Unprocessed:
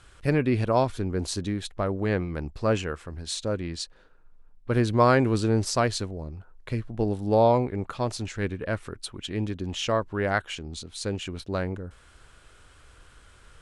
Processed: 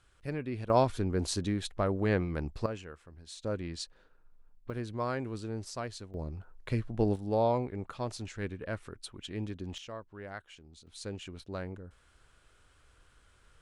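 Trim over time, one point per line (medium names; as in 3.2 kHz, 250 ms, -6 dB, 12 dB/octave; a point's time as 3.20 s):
-13 dB
from 0.70 s -2.5 dB
from 2.66 s -15 dB
from 3.44 s -6 dB
from 4.70 s -14.5 dB
from 6.14 s -2 dB
from 7.16 s -8 dB
from 9.78 s -18 dB
from 10.87 s -10 dB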